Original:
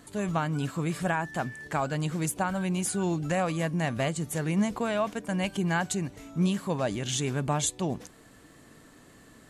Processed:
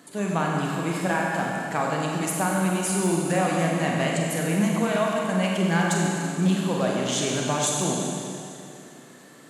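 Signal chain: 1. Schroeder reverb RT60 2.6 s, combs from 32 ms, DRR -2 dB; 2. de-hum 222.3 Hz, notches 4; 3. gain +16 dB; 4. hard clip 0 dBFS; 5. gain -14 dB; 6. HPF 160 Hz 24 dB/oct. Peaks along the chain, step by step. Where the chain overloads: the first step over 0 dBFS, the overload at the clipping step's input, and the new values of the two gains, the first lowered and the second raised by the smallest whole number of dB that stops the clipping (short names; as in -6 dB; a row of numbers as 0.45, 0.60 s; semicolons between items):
-11.5, -11.5, +4.5, 0.0, -14.0, -9.0 dBFS; step 3, 4.5 dB; step 3 +11 dB, step 5 -9 dB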